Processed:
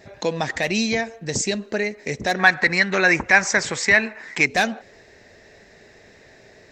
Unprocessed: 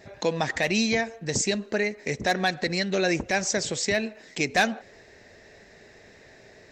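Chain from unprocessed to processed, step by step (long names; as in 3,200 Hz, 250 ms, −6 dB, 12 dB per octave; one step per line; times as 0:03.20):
0:02.39–0:04.46: flat-topped bell 1,400 Hz +12 dB
level +2 dB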